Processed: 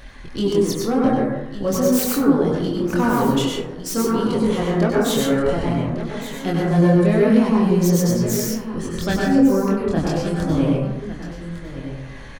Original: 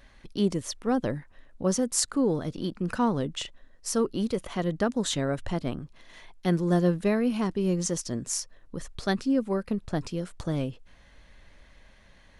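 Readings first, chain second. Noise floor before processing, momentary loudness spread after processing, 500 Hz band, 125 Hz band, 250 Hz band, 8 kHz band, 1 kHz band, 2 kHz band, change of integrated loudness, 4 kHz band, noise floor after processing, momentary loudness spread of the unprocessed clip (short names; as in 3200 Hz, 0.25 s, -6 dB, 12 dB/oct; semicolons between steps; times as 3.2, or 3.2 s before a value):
-56 dBFS, 13 LU, +10.0 dB, +10.0 dB, +10.0 dB, +3.5 dB, +9.5 dB, +9.5 dB, +9.5 dB, +6.5 dB, -34 dBFS, 11 LU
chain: self-modulated delay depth 0.19 ms; in parallel at +1 dB: compressor, threshold -38 dBFS, peak gain reduction 18.5 dB; on the sum: echo 1.156 s -13 dB; chorus voices 2, 0.25 Hz, delay 24 ms, depth 1.9 ms; soft clip -15 dBFS, distortion -25 dB; plate-style reverb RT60 0.93 s, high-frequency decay 0.3×, pre-delay 85 ms, DRR -3.5 dB; reverse; upward compressor, threshold -36 dBFS; reverse; gain +6 dB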